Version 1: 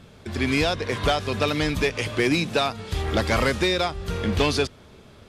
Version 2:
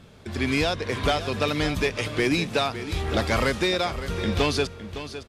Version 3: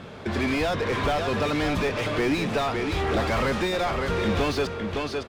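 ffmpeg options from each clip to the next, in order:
ffmpeg -i in.wav -af "aecho=1:1:560:0.251,volume=-1.5dB" out.wav
ffmpeg -i in.wav -filter_complex "[0:a]asplit=2[link_01][link_02];[link_02]highpass=frequency=720:poles=1,volume=27dB,asoftclip=type=tanh:threshold=-12.5dB[link_03];[link_01][link_03]amix=inputs=2:normalize=0,lowpass=frequency=1300:poles=1,volume=-6dB,lowshelf=frequency=190:gain=7,volume=-4.5dB" out.wav

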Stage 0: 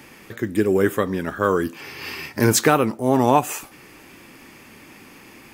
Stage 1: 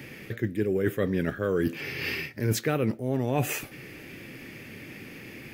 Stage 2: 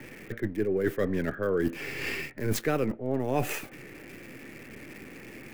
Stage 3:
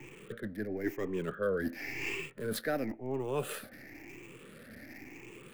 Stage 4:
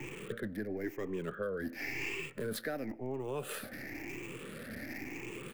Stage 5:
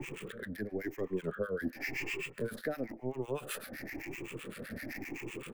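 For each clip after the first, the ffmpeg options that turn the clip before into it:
ffmpeg -i in.wav -af "equalizer=frequency=125:width_type=o:width=1:gain=9,equalizer=frequency=500:width_type=o:width=1:gain=5,equalizer=frequency=1000:width_type=o:width=1:gain=-12,equalizer=frequency=2000:width_type=o:width=1:gain=6,equalizer=frequency=8000:width_type=o:width=1:gain=-7,areverse,acompressor=threshold=-22dB:ratio=16,areverse" out.wav
ffmpeg -i in.wav -filter_complex "[0:a]acrossover=split=220|960|2500[link_01][link_02][link_03][link_04];[link_01]aeval=exprs='max(val(0),0)':channel_layout=same[link_05];[link_04]acrusher=bits=5:dc=4:mix=0:aa=0.000001[link_06];[link_05][link_02][link_03][link_06]amix=inputs=4:normalize=0" out.wav
ffmpeg -i in.wav -filter_complex "[0:a]afftfilt=real='re*pow(10,13/40*sin(2*PI*(0.7*log(max(b,1)*sr/1024/100)/log(2)-(0.96)*(pts-256)/sr)))':imag='im*pow(10,13/40*sin(2*PI*(0.7*log(max(b,1)*sr/1024/100)/log(2)-(0.96)*(pts-256)/sr)))':win_size=1024:overlap=0.75,acrossover=split=180[link_01][link_02];[link_01]alimiter=level_in=8.5dB:limit=-24dB:level=0:latency=1:release=317,volume=-8.5dB[link_03];[link_03][link_02]amix=inputs=2:normalize=0,volume=-7dB" out.wav
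ffmpeg -i in.wav -filter_complex "[0:a]acompressor=threshold=-42dB:ratio=5,asplit=2[link_01][link_02];[link_02]adelay=151.6,volume=-28dB,highshelf=frequency=4000:gain=-3.41[link_03];[link_01][link_03]amix=inputs=2:normalize=0,volume=6.5dB" out.wav
ffmpeg -i in.wav -filter_complex "[0:a]acrossover=split=1000[link_01][link_02];[link_01]aeval=exprs='val(0)*(1-1/2+1/2*cos(2*PI*7.8*n/s))':channel_layout=same[link_03];[link_02]aeval=exprs='val(0)*(1-1/2-1/2*cos(2*PI*7.8*n/s))':channel_layout=same[link_04];[link_03][link_04]amix=inputs=2:normalize=0,volume=5dB" out.wav

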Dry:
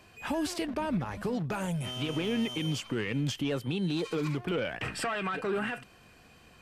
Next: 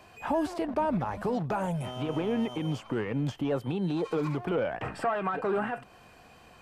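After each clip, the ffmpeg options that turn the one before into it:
ffmpeg -i in.wav -filter_complex "[0:a]equalizer=frequency=790:width_type=o:width=1.3:gain=8,acrossover=split=1600[link_01][link_02];[link_02]acompressor=threshold=-48dB:ratio=6[link_03];[link_01][link_03]amix=inputs=2:normalize=0" out.wav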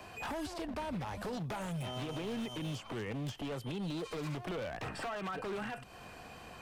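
ffmpeg -i in.wav -filter_complex "[0:a]acrossover=split=120|2600|5300[link_01][link_02][link_03][link_04];[link_01]acompressor=threshold=-50dB:ratio=4[link_05];[link_02]acompressor=threshold=-43dB:ratio=4[link_06];[link_03]acompressor=threshold=-53dB:ratio=4[link_07];[link_04]acompressor=threshold=-59dB:ratio=4[link_08];[link_05][link_06][link_07][link_08]amix=inputs=4:normalize=0,aeval=exprs='0.0141*(abs(mod(val(0)/0.0141+3,4)-2)-1)':channel_layout=same,volume=4dB" out.wav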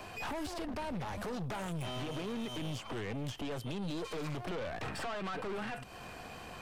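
ffmpeg -i in.wav -af "aeval=exprs='(tanh(112*val(0)+0.5)-tanh(0.5))/112':channel_layout=same,volume=5.5dB" out.wav

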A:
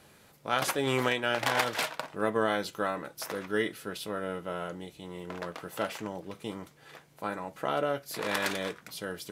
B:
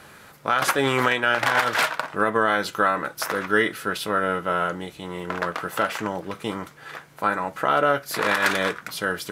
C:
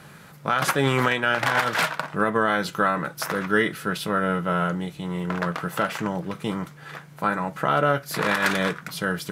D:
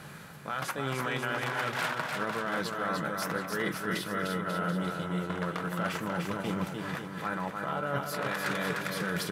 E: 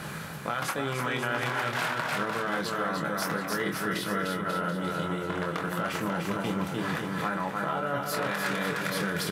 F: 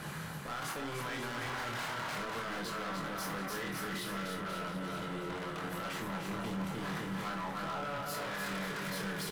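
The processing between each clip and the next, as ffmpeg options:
ffmpeg -i in.wav -af "equalizer=frequency=1400:width=1.2:gain=8.5,alimiter=limit=-16dB:level=0:latency=1:release=164,volume=8dB" out.wav
ffmpeg -i in.wav -af "equalizer=frequency=160:width_type=o:width=0.63:gain=13.5,volume=-1.5dB" out.wav
ffmpeg -i in.wav -af "areverse,acompressor=threshold=-30dB:ratio=10,areverse,aecho=1:1:300|540|732|885.6|1008:0.631|0.398|0.251|0.158|0.1" out.wav
ffmpeg -i in.wav -filter_complex "[0:a]acompressor=threshold=-35dB:ratio=6,asplit=2[link_01][link_02];[link_02]adelay=25,volume=-6.5dB[link_03];[link_01][link_03]amix=inputs=2:normalize=0,volume=8dB" out.wav
ffmpeg -i in.wav -filter_complex "[0:a]asoftclip=type=hard:threshold=-31.5dB,asplit=2[link_01][link_02];[link_02]aecho=0:1:26|62:0.531|0.316[link_03];[link_01][link_03]amix=inputs=2:normalize=0,volume=-5.5dB" out.wav

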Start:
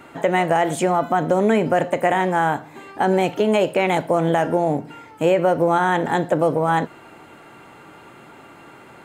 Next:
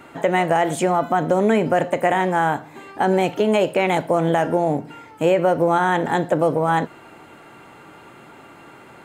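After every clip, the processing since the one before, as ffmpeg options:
ffmpeg -i in.wav -af anull out.wav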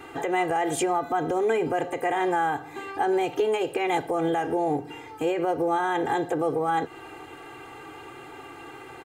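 ffmpeg -i in.wav -af "alimiter=limit=-16.5dB:level=0:latency=1:release=204,aecho=1:1:2.5:0.95,volume=-1.5dB" out.wav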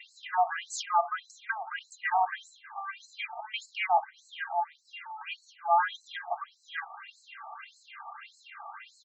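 ffmpeg -i in.wav -af "afftfilt=real='re*between(b*sr/1024,870*pow(5800/870,0.5+0.5*sin(2*PI*1.7*pts/sr))/1.41,870*pow(5800/870,0.5+0.5*sin(2*PI*1.7*pts/sr))*1.41)':imag='im*between(b*sr/1024,870*pow(5800/870,0.5+0.5*sin(2*PI*1.7*pts/sr))/1.41,870*pow(5800/870,0.5+0.5*sin(2*PI*1.7*pts/sr))*1.41)':win_size=1024:overlap=0.75,volume=3.5dB" out.wav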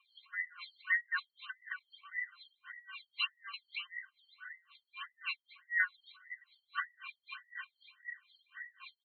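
ffmpeg -i in.wav -af "afftfilt=real='real(if(between(b,1,1008),(2*floor((b-1)/48)+1)*48-b,b),0)':imag='imag(if(between(b,1,1008),(2*floor((b-1)/48)+1)*48-b,b),0)*if(between(b,1,1008),-1,1)':win_size=2048:overlap=0.75,afftfilt=real='re*between(b*sr/4096,730,4500)':imag='im*between(b*sr/4096,730,4500)':win_size=4096:overlap=0.75,aeval=exprs='val(0)*pow(10,-28*(0.5-0.5*cos(2*PI*3.9*n/s))/20)':channel_layout=same,volume=4dB" out.wav

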